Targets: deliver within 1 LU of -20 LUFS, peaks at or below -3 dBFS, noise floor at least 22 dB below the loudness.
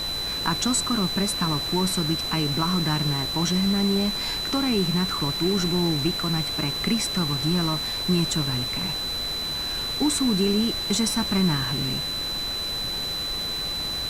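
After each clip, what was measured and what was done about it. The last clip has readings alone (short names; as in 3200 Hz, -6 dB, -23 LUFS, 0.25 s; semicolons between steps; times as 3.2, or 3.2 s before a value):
steady tone 4000 Hz; tone level -27 dBFS; noise floor -29 dBFS; noise floor target -46 dBFS; loudness -23.5 LUFS; peak -9.5 dBFS; loudness target -20.0 LUFS
-> notch 4000 Hz, Q 30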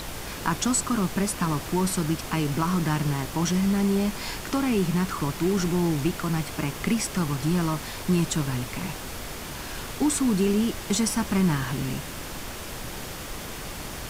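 steady tone none; noise floor -37 dBFS; noise floor target -49 dBFS
-> noise print and reduce 12 dB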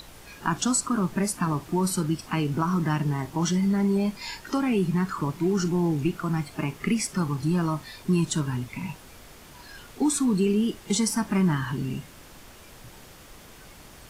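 noise floor -48 dBFS; loudness -26.0 LUFS; peak -12.0 dBFS; loudness target -20.0 LUFS
-> gain +6 dB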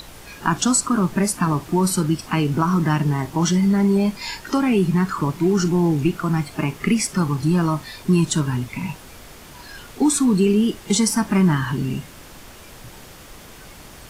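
loudness -20.0 LUFS; peak -6.0 dBFS; noise floor -42 dBFS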